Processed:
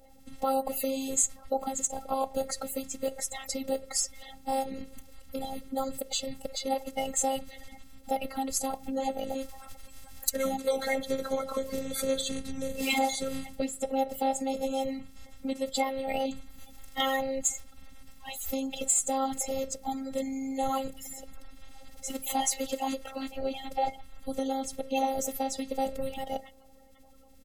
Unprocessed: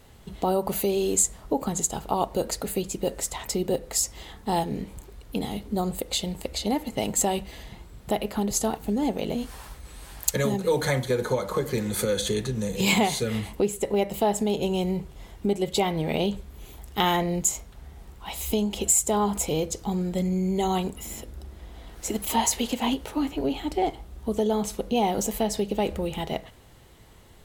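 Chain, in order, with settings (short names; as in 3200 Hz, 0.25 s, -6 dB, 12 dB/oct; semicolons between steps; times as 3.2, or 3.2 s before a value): bin magnitudes rounded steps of 30 dB; comb 1.5 ms, depth 83%; robotiser 268 Hz; gain -3.5 dB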